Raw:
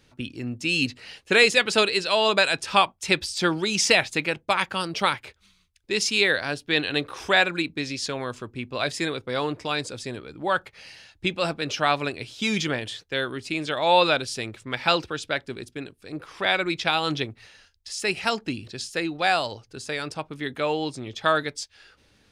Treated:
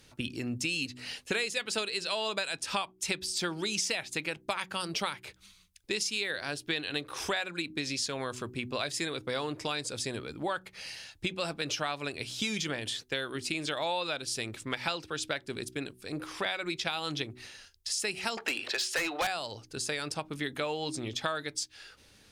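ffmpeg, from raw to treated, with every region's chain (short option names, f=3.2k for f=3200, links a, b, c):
-filter_complex "[0:a]asettb=1/sr,asplit=3[a][b][c];[a]atrim=end=18.374[d];[b]atrim=start=18.37:end=19.27,asetpts=PTS-STARTPTS,afade=t=in:d=0.004:c=qsin,afade=t=out:st=0.896:d=0.004:c=qsin,acrossover=split=440 2800:gain=0.0708 1 0.2[e][f][g];[e][f][g]amix=inputs=3:normalize=0,asplit=2[h][i];[i]highpass=f=720:p=1,volume=28dB,asoftclip=type=tanh:threshold=-11dB[j];[h][j]amix=inputs=2:normalize=0,lowpass=f=6.7k:p=1,volume=-6dB[k];[c]atrim=start=19.266[l];[d][k]acrossfade=d=0.004:c1=hsin:c2=qsin[m];[m][l]acrossfade=d=0.004:c1=qsin:c2=hsin,aemphasis=mode=production:type=cd,bandreject=f=62.37:t=h:w=4,bandreject=f=124.74:t=h:w=4,bandreject=f=187.11:t=h:w=4,bandreject=f=249.48:t=h:w=4,bandreject=f=311.85:t=h:w=4,bandreject=f=374.22:t=h:w=4,acompressor=threshold=-30dB:ratio=6"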